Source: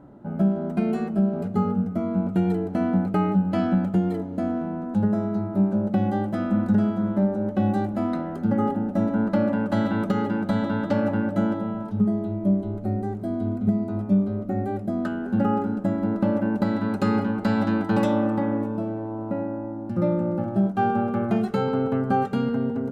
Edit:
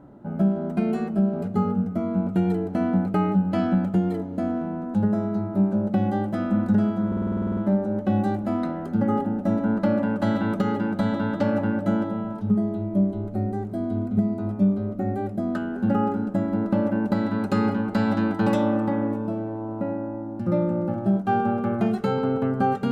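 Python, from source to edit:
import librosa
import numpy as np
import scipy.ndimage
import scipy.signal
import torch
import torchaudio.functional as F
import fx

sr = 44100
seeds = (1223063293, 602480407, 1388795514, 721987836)

y = fx.edit(x, sr, fx.stutter(start_s=7.07, slice_s=0.05, count=11), tone=tone)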